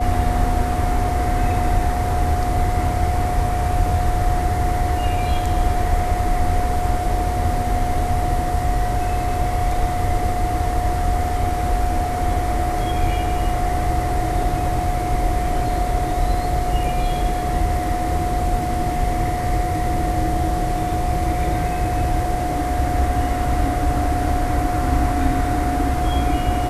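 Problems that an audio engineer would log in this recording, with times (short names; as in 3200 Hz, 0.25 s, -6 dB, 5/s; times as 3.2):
tone 720 Hz -23 dBFS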